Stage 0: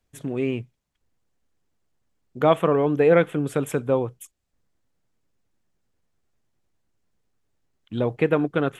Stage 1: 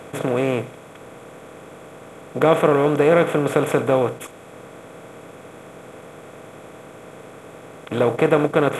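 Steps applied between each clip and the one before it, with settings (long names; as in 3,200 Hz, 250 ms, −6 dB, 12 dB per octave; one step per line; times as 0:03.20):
compressor on every frequency bin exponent 0.4
level −1 dB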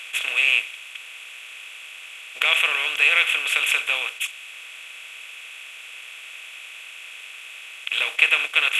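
high-pass with resonance 2,700 Hz, resonance Q 6.1
level +5 dB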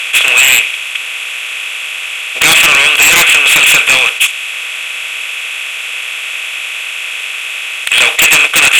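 sine wavefolder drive 17 dB, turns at −1 dBFS
level −1.5 dB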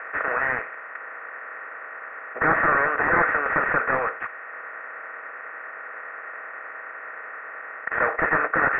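Chebyshev low-pass with heavy ripple 1,900 Hz, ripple 3 dB
level −2.5 dB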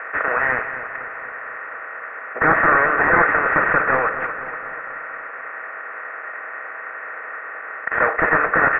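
repeating echo 243 ms, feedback 59%, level −11 dB
level +4.5 dB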